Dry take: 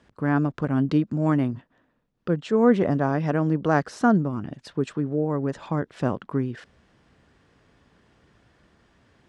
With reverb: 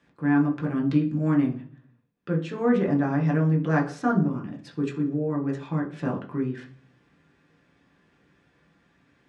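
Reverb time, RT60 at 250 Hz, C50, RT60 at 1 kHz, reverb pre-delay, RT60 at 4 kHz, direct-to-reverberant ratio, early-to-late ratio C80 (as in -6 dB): 0.45 s, 0.70 s, 11.5 dB, 0.40 s, 6 ms, 0.60 s, -0.5 dB, 16.5 dB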